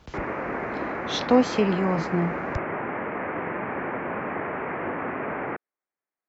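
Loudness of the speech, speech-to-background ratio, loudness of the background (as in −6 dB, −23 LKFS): −24.5 LKFS, 6.0 dB, −30.5 LKFS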